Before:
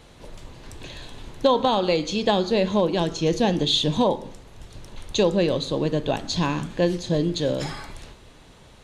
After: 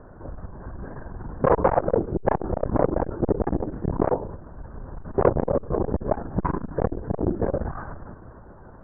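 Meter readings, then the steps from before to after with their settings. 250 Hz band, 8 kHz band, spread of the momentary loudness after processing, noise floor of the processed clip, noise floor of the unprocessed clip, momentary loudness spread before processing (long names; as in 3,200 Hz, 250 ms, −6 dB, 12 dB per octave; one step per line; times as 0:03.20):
−3.5 dB, below −40 dB, 18 LU, −45 dBFS, −49 dBFS, 19 LU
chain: Butterworth low-pass 1,600 Hz 72 dB per octave
linear-prediction vocoder at 8 kHz whisper
saturating transformer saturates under 520 Hz
level +5 dB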